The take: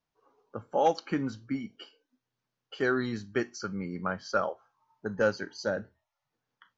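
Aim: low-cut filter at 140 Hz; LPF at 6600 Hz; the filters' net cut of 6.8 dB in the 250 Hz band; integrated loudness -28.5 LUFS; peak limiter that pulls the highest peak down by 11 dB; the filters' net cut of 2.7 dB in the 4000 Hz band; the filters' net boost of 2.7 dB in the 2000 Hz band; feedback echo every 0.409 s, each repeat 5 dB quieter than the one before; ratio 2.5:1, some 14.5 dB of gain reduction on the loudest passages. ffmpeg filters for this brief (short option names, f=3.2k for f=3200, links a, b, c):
-af "highpass=140,lowpass=6.6k,equalizer=f=250:t=o:g=-8.5,equalizer=f=2k:t=o:g=5,equalizer=f=4k:t=o:g=-4.5,acompressor=threshold=-43dB:ratio=2.5,alimiter=level_in=11dB:limit=-24dB:level=0:latency=1,volume=-11dB,aecho=1:1:409|818|1227|1636|2045|2454|2863:0.562|0.315|0.176|0.0988|0.0553|0.031|0.0173,volume=18.5dB"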